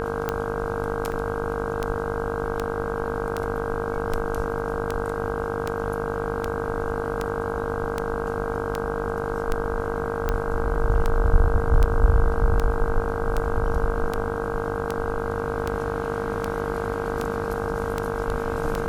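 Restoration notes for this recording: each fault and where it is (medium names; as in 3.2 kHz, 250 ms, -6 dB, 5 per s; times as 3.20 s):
buzz 50 Hz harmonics 32 -30 dBFS
tick 78 rpm -11 dBFS
whine 460 Hz -28 dBFS
1.12 s: dropout 3.5 ms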